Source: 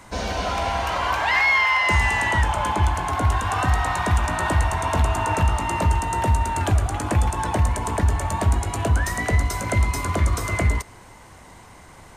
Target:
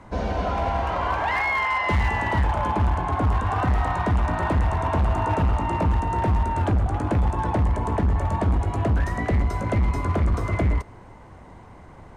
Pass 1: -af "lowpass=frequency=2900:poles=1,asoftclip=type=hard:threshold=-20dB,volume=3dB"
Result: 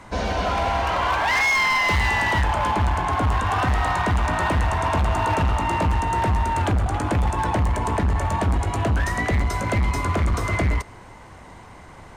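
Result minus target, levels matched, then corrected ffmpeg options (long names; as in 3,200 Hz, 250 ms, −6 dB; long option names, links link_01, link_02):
4,000 Hz band +7.5 dB
-af "lowpass=frequency=740:poles=1,asoftclip=type=hard:threshold=-20dB,volume=3dB"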